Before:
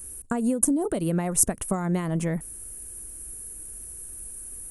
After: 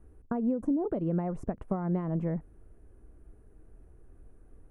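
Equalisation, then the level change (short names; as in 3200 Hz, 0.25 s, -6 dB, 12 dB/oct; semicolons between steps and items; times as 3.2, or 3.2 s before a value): LPF 1000 Hz 12 dB/oct; -4.0 dB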